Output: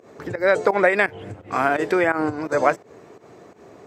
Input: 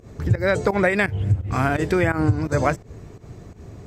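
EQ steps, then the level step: high-pass 420 Hz 12 dB/octave; treble shelf 2.7 kHz -9.5 dB; +5.0 dB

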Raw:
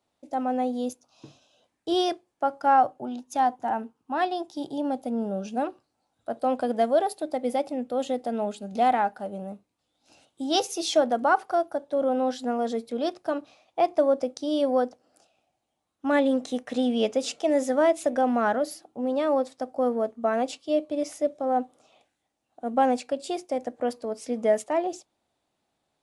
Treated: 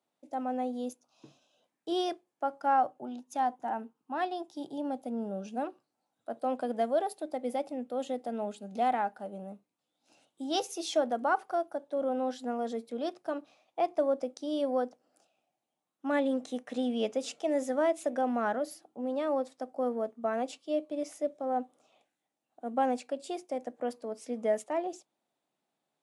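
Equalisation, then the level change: high-pass 140 Hz 24 dB/octave; peaking EQ 4.6 kHz -2.5 dB; -6.5 dB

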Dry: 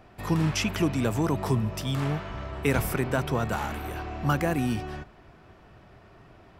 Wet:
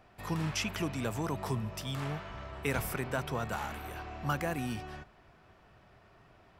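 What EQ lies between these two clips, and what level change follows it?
peaking EQ 320 Hz -3 dB 0.74 oct; bass shelf 440 Hz -4 dB; -5.0 dB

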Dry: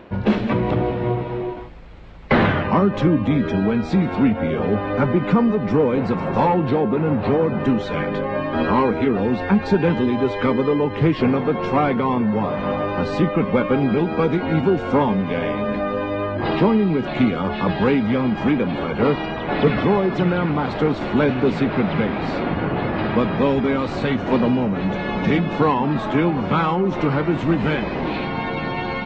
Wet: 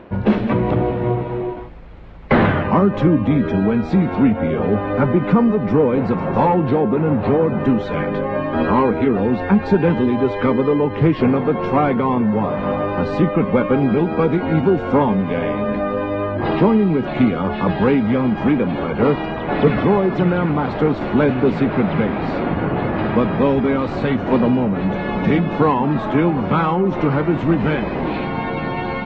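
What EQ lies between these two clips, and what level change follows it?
treble shelf 3.5 kHz -11 dB; +2.5 dB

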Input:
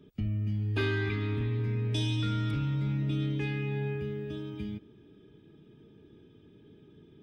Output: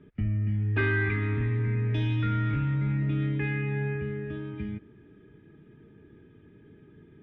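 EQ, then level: resonant low-pass 1.9 kHz, resonance Q 3; bass shelf 180 Hz +5 dB; 0.0 dB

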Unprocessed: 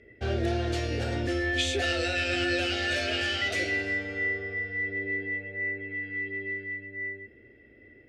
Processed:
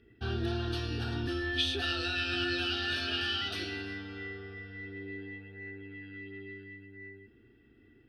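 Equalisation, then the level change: peaking EQ 76 Hz -5 dB 0.86 oct; static phaser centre 2.1 kHz, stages 6; 0.0 dB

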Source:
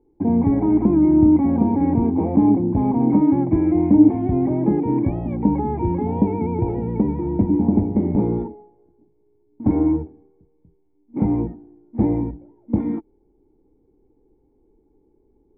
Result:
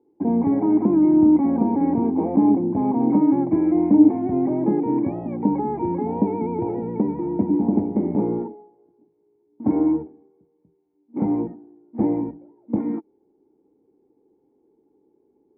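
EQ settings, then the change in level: band-pass 210–2000 Hz; 0.0 dB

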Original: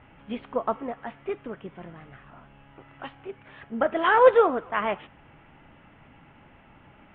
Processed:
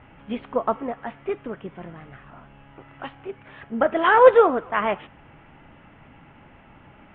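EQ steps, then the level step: distance through air 93 m; +4.0 dB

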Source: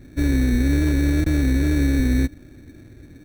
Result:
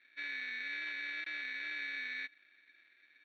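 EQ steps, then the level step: Butterworth band-pass 2.7 kHz, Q 1.3; distance through air 220 m; +1.0 dB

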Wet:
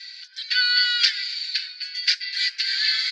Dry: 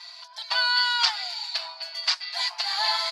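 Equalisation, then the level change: rippled Chebyshev high-pass 1.5 kHz, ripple 3 dB; distance through air 110 m; +8.5 dB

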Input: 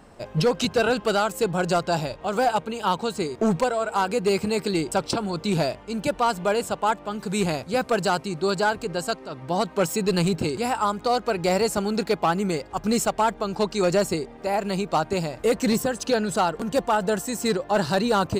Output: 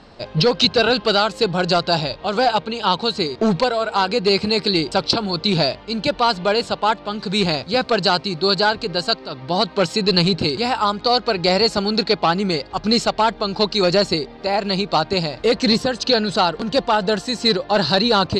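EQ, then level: resonant low-pass 4.3 kHz, resonance Q 3.7; +4.0 dB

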